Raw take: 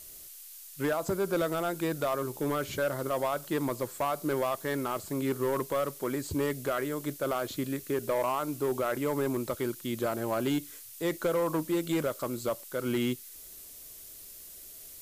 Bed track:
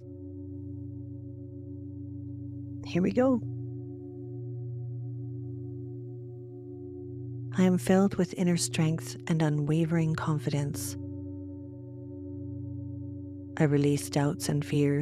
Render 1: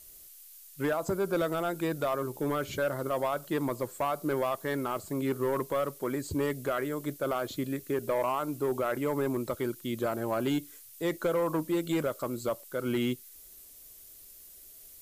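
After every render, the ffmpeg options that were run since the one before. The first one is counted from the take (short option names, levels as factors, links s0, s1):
-af "afftdn=nr=6:nf=-48"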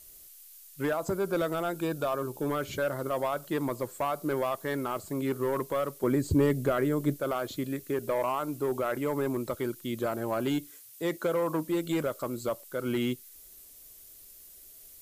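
-filter_complex "[0:a]asettb=1/sr,asplit=3[s0][s1][s2];[s0]atrim=end=1.774[s3];[s1]atrim=start=1.77:end=2.49,asetpts=PTS-STARTPTS,afade=t=in:d=0.004:c=qsin,afade=t=out:st=0.716:d=0.004:c=qsin,asuperstop=centerf=2000:order=4:qfactor=5.3[s4];[s2]atrim=start=2.486[s5];[s3][s4]acrossfade=d=0.004:c1=hsin:c2=qsin[s6];[s6][s5]acrossfade=d=0.004:c1=qsin:c2=hsin,asettb=1/sr,asplit=3[s7][s8][s9];[s7]atrim=end=6.034[s10];[s8]atrim=start=6.03:end=7.2,asetpts=PTS-STARTPTS,afade=t=in:d=0.004:c=qsin,afade=t=out:st=1.166:d=0.004:c=qsin,lowshelf=f=430:g=10[s11];[s9]atrim=start=7.196[s12];[s10][s11]acrossfade=d=0.004:c1=hsin:c2=qsin[s13];[s13][s12]acrossfade=d=0.004:c1=qsin:c2=hsin,asettb=1/sr,asplit=3[s14][s15][s16];[s14]atrim=end=10.674[s17];[s15]atrim=start=10.67:end=11.68,asetpts=PTS-STARTPTS,afade=t=in:d=0.004:c=qsin,afade=t=out:st=1.006:d=0.004:c=qsin,highpass=84[s18];[s16]atrim=start=11.676[s19];[s17][s18]acrossfade=d=0.004:c1=hsin:c2=qsin[s20];[s20][s19]acrossfade=d=0.004:c1=qsin:c2=hsin"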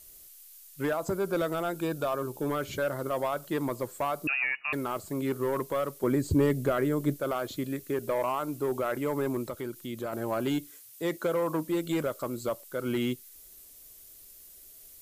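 -filter_complex "[0:a]asettb=1/sr,asplit=3[s0][s1][s2];[s0]atrim=end=4.274[s3];[s1]atrim=start=4.27:end=4.73,asetpts=PTS-STARTPTS,afade=t=in:d=0.004:c=qsin,afade=t=out:st=0.456:d=0.004:c=qsin,lowpass=f=2500:t=q:w=0.5098,lowpass=f=2500:t=q:w=0.6013,lowpass=f=2500:t=q:w=0.9,lowpass=f=2500:t=q:w=2.563,afreqshift=-2900[s4];[s2]atrim=start=4.726[s5];[s3][s4]acrossfade=d=0.004:c1=hsin:c2=qsin[s6];[s6][s5]acrossfade=d=0.004:c1=qsin:c2=hsin,asettb=1/sr,asplit=3[s7][s8][s9];[s7]atrim=end=9.464[s10];[s8]atrim=start=9.46:end=10.13,asetpts=PTS-STARTPTS,afade=t=in:d=0.004:c=qsin,afade=t=out:st=0.666:d=0.004:c=qsin,acompressor=threshold=0.0126:ratio=1.5:attack=3.2:release=140:knee=1:detection=peak[s11];[s9]atrim=start=10.126[s12];[s10][s11]acrossfade=d=0.004:c1=hsin:c2=qsin[s13];[s13][s12]acrossfade=d=0.004:c1=qsin:c2=hsin"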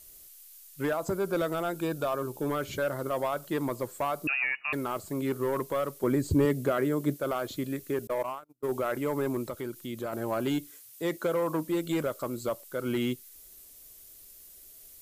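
-filter_complex "[0:a]asettb=1/sr,asplit=3[s0][s1][s2];[s0]atrim=end=6.454[s3];[s1]atrim=start=6.45:end=7.21,asetpts=PTS-STARTPTS,afade=t=in:d=0.004:c=qsin,afade=t=out:st=0.756:d=0.004:c=qsin,highpass=120[s4];[s2]atrim=start=7.206[s5];[s3][s4]acrossfade=d=0.004:c1=hsin:c2=qsin[s6];[s6][s5]acrossfade=d=0.004:c1=qsin:c2=hsin,asettb=1/sr,asplit=3[s7][s8][s9];[s7]atrim=end=8.074[s10];[s8]atrim=start=8.07:end=8.69,asetpts=PTS-STARTPTS,afade=t=in:d=0.004:c=qsin,afade=t=out:st=0.616:d=0.004:c=qsin,agate=range=0.00891:threshold=0.0355:ratio=16:release=100:detection=peak[s11];[s9]atrim=start=8.686[s12];[s10][s11]acrossfade=d=0.004:c1=hsin:c2=qsin[s13];[s13][s12]acrossfade=d=0.004:c1=qsin:c2=hsin"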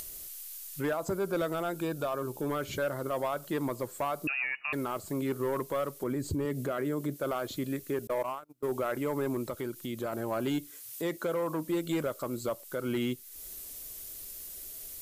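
-af "alimiter=limit=0.0631:level=0:latency=1:release=90,acompressor=mode=upward:threshold=0.02:ratio=2.5"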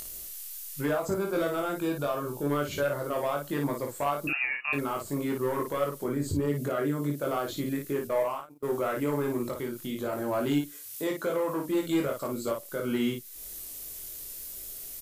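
-af "aecho=1:1:21|55:0.708|0.596"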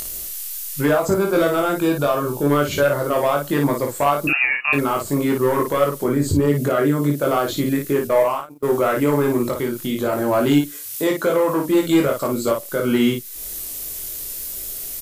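-af "volume=3.55"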